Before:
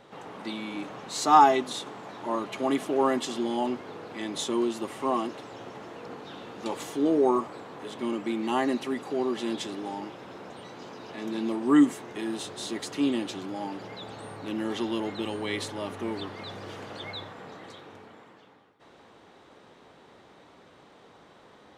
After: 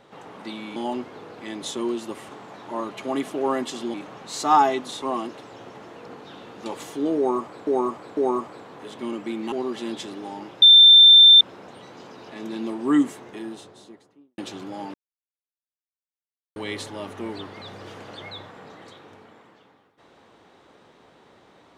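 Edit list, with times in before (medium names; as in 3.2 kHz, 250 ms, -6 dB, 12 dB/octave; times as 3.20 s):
0.76–1.84 s: swap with 3.49–5.02 s
7.17–7.67 s: loop, 3 plays
8.52–9.13 s: delete
10.23 s: add tone 3.57 kHz -7 dBFS 0.79 s
11.83–13.20 s: studio fade out
13.76–15.38 s: mute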